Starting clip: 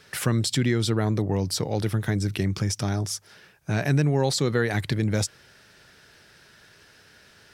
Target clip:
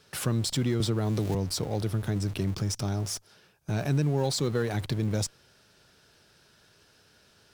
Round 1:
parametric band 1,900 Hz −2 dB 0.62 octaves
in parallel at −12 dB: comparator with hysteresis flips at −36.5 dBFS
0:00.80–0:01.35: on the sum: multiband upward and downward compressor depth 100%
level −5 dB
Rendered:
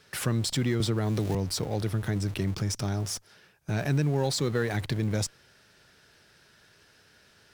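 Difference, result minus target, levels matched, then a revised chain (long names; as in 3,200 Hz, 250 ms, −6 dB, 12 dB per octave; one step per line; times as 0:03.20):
2,000 Hz band +3.5 dB
parametric band 1,900 Hz −8.5 dB 0.62 octaves
in parallel at −12 dB: comparator with hysteresis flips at −36.5 dBFS
0:00.80–0:01.35: on the sum: multiband upward and downward compressor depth 100%
level −5 dB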